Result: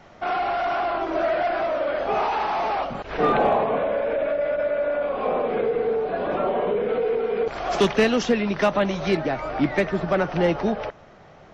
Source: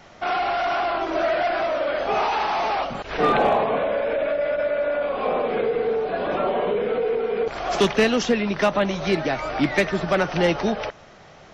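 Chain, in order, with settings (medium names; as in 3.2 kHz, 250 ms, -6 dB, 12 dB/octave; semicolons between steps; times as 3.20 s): treble shelf 2.5 kHz -8.5 dB, from 6.89 s -3.5 dB, from 9.17 s -11.5 dB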